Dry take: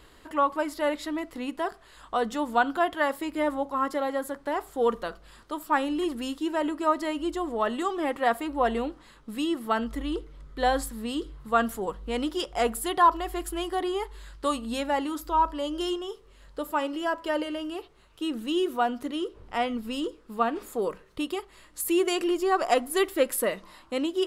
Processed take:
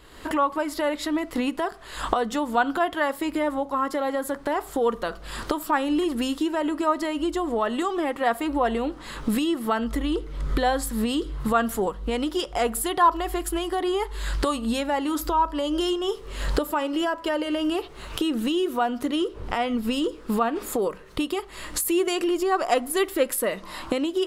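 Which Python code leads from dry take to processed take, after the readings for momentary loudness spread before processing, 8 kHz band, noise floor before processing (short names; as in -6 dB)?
10 LU, +5.0 dB, -55 dBFS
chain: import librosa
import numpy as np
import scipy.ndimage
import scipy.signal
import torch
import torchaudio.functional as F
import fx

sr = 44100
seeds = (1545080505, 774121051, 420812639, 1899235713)

y = fx.recorder_agc(x, sr, target_db=-18.5, rise_db_per_s=48.0, max_gain_db=30)
y = y * 10.0 ** (1.0 / 20.0)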